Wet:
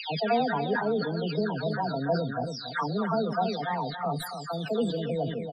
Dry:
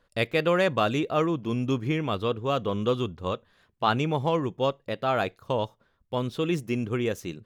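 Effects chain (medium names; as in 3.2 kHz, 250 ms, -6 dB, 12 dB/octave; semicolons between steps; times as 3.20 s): delay that grows with frequency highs early, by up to 856 ms; speed mistake 33 rpm record played at 45 rpm; loudest bins only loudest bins 32; on a send: feedback delay 281 ms, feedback 19%, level -9 dB; on the sum: dynamic bell 2.1 kHz, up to -7 dB, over -45 dBFS, Q 1.1; decay stretcher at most 55 dB/s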